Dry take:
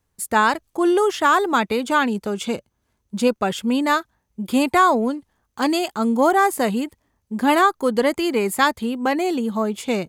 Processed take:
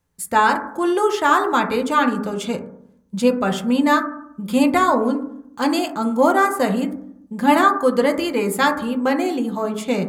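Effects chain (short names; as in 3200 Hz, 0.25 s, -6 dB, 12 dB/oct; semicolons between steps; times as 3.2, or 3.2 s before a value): 6.23–6.71 transient shaper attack +1 dB, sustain -4 dB; reverb RT60 0.70 s, pre-delay 3 ms, DRR 3.5 dB; gain -1 dB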